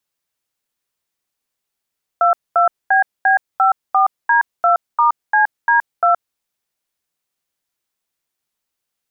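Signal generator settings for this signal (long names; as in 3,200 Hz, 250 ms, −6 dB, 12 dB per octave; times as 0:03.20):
touch tones "22BB54D2*CD2", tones 121 ms, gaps 226 ms, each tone −12.5 dBFS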